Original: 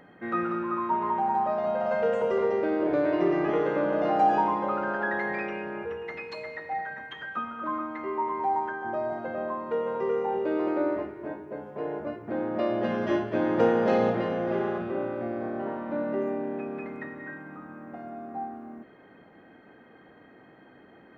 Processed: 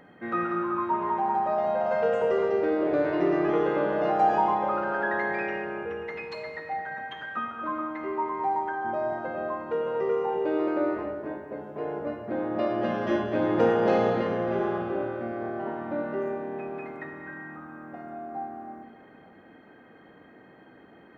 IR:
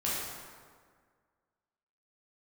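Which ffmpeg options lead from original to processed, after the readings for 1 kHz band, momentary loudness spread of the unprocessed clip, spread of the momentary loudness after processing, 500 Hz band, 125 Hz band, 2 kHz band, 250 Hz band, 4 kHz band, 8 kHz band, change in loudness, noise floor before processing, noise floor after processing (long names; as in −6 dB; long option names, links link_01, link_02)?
+0.5 dB, 14 LU, 14 LU, +0.5 dB, +0.5 dB, +1.0 dB, 0.0 dB, +1.0 dB, can't be measured, +0.5 dB, −54 dBFS, −53 dBFS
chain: -filter_complex "[0:a]asplit=2[link_01][link_02];[1:a]atrim=start_sample=2205,adelay=53[link_03];[link_02][link_03]afir=irnorm=-1:irlink=0,volume=-14.5dB[link_04];[link_01][link_04]amix=inputs=2:normalize=0"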